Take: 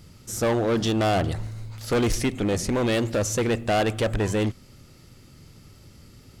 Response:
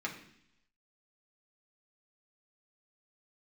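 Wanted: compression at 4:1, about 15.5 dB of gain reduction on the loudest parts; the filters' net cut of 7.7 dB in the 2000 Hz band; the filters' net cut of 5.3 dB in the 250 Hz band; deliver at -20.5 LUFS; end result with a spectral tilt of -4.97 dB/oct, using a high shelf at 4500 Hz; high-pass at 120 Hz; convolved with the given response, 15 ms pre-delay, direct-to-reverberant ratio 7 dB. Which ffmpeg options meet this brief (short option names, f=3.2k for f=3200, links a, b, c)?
-filter_complex "[0:a]highpass=120,equalizer=f=250:t=o:g=-6.5,equalizer=f=2k:t=o:g=-9,highshelf=f=4.5k:g=-7,acompressor=threshold=-41dB:ratio=4,asplit=2[a][b];[1:a]atrim=start_sample=2205,adelay=15[c];[b][c]afir=irnorm=-1:irlink=0,volume=-10.5dB[d];[a][d]amix=inputs=2:normalize=0,volume=21dB"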